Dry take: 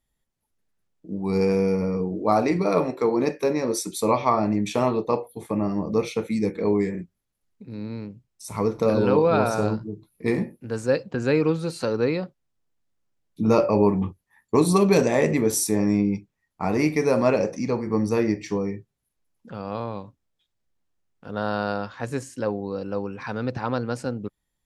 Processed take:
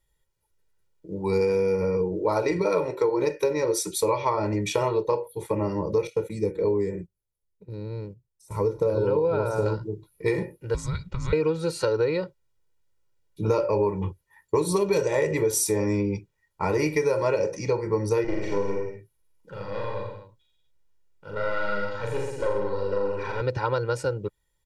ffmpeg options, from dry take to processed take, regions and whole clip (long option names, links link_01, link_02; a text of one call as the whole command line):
ffmpeg -i in.wav -filter_complex "[0:a]asettb=1/sr,asplit=3[link_01][link_02][link_03];[link_01]atrim=end=6.074[link_04];[link_02]atrim=start=6.07:end=9.66,asetpts=PTS-STARTPTS,afade=type=in:duration=0.004:curve=qsin,afade=type=out:start_time=3.586:duration=0.004:curve=qsin,acrossover=split=2700[link_05][link_06];[link_06]acompressor=threshold=-43dB:ratio=4:attack=1:release=60[link_07];[link_05][link_07]amix=inputs=2:normalize=0,equalizer=frequency=2300:width_type=o:width=2.9:gain=-9,agate=range=-9dB:threshold=-43dB:ratio=16:release=100:detection=peak[link_08];[link_03]atrim=start=9.656[link_09];[link_04][link_08]acrossfade=duration=0.004:curve1=hsin:curve2=qsin[link_10];[link_10][link_09]acrossfade=duration=0.004:curve1=qsin:curve2=hsin,asettb=1/sr,asplit=3[link_11][link_12][link_13];[link_11]atrim=end=10.744[link_14];[link_12]atrim=start=10.74:end=11.33,asetpts=PTS-STARTPTS,afade=type=in:duration=0.004:curve=qsin,afade=type=out:start_time=0.586:duration=0.004:curve=qsin,acompressor=threshold=-25dB:ratio=6:attack=3.2:release=140:knee=1:detection=peak,afreqshift=-380[link_15];[link_13]atrim=start=11.326[link_16];[link_14][link_15]acrossfade=duration=0.004:curve1=hsin:curve2=qsin[link_17];[link_17][link_16]acrossfade=duration=0.004:curve1=qsin:curve2=hsin,asettb=1/sr,asplit=3[link_18][link_19][link_20];[link_18]atrim=end=18.244[link_21];[link_19]atrim=start=18.24:end=23.41,asetpts=PTS-STARTPTS,afade=type=in:duration=0.004:curve=qsin,afade=type=out:start_time=5.166:duration=0.004:curve=qsin,acrossover=split=3300[link_22][link_23];[link_23]acompressor=threshold=-50dB:ratio=4:attack=1:release=60[link_24];[link_22][link_24]amix=inputs=2:normalize=0,aeval=exprs='(tanh(10*val(0)+0.75)-tanh(0.75))/10':channel_layout=same,aecho=1:1:40|84|132.4|185.6|244.2:0.794|0.631|0.501|0.398|0.316,atrim=end_sample=227997[link_25];[link_20]atrim=start=23.406[link_26];[link_21][link_25]acrossfade=duration=0.004:curve1=hsin:curve2=qsin[link_27];[link_27][link_26]acrossfade=duration=0.004:curve1=qsin:curve2=hsin,aecho=1:1:2.1:0.97,acompressor=threshold=-20dB:ratio=5" out.wav